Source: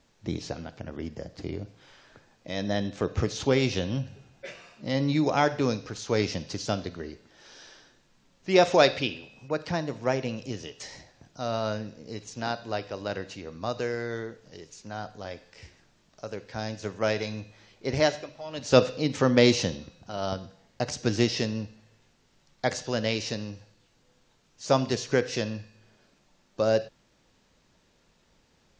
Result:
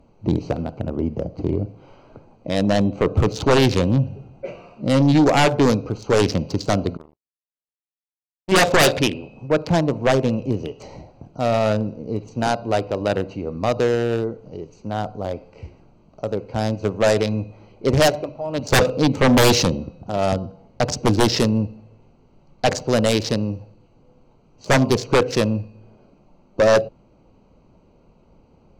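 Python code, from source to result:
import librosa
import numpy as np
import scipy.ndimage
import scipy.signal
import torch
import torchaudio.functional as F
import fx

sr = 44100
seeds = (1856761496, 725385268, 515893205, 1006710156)

y = fx.wiener(x, sr, points=25)
y = fx.power_curve(y, sr, exponent=3.0, at=(6.97, 8.52))
y = fx.fold_sine(y, sr, drive_db=16, ceiling_db=-3.5)
y = y * 10.0 ** (-6.5 / 20.0)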